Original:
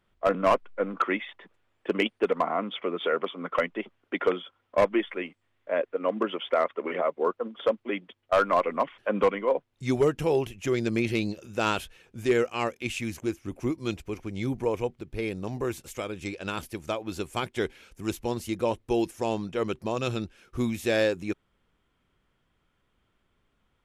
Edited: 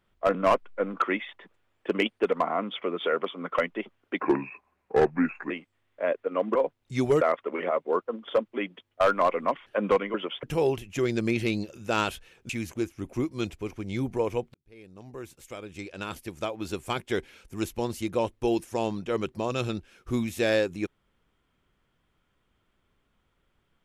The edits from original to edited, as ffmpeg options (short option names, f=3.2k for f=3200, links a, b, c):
-filter_complex "[0:a]asplit=9[a][b][c][d][e][f][g][h][i];[a]atrim=end=4.204[j];[b]atrim=start=4.2:end=5.19,asetpts=PTS-STARTPTS,asetrate=33516,aresample=44100,atrim=end_sample=57446,asetpts=PTS-STARTPTS[k];[c]atrim=start=5.186:end=6.242[l];[d]atrim=start=9.458:end=10.122[m];[e]atrim=start=6.528:end=9.462[n];[f]atrim=start=6.238:end=6.532[o];[g]atrim=start=10.118:end=12.182[p];[h]atrim=start=12.958:end=15.01,asetpts=PTS-STARTPTS,afade=t=out:st=2.048:d=0.004:c=hsin[q];[i]atrim=start=15.01,asetpts=PTS-STARTPTS,afade=t=in:d=2.11[r];[j][k]acrossfade=d=0.004:c1=hsin:c2=hsin[s];[s][l]acrossfade=d=0.004:c1=hsin:c2=hsin[t];[t][m]acrossfade=d=0.004:c1=hsin:c2=hsin[u];[u][n]acrossfade=d=0.004:c1=hsin:c2=hsin[v];[v][o]acrossfade=d=0.004:c1=hsin:c2=hsin[w];[w][p]acrossfade=d=0.004:c1=hsin:c2=hsin[x];[q][r]concat=n=2:v=0:a=1[y];[x][y]acrossfade=d=0.004:c1=hsin:c2=hsin"